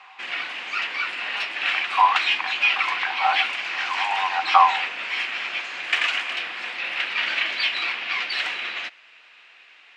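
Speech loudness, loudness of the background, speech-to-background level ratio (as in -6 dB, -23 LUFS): -23.5 LUFS, -24.0 LUFS, 0.5 dB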